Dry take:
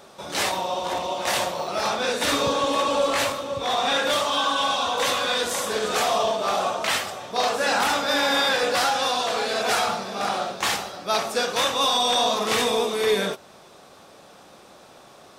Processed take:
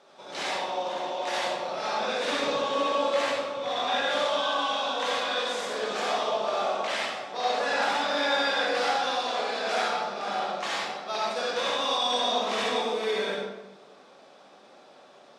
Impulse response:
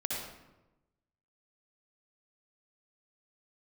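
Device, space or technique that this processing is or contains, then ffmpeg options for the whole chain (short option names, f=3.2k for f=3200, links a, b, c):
supermarket ceiling speaker: -filter_complex "[0:a]highpass=250,lowpass=5.6k[a];[1:a]atrim=start_sample=2205[b];[a][b]afir=irnorm=-1:irlink=0,volume=-8.5dB"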